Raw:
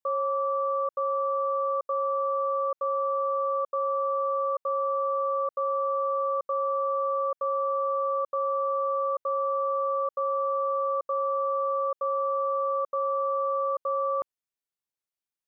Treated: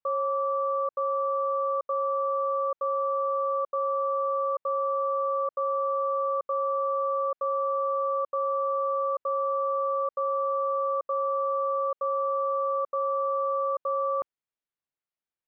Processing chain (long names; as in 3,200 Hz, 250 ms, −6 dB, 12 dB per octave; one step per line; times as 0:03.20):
low-pass filter 2,900 Hz 12 dB per octave